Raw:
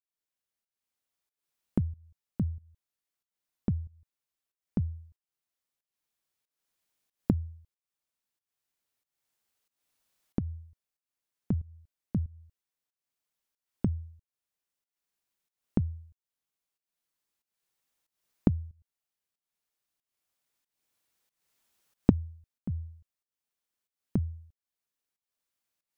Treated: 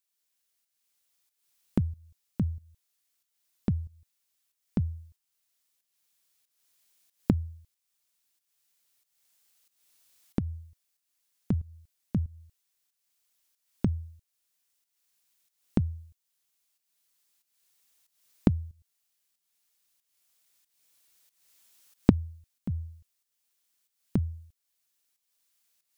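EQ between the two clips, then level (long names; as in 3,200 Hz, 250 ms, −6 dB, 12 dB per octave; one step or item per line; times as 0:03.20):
high-shelf EQ 2,100 Hz +12 dB
+1.5 dB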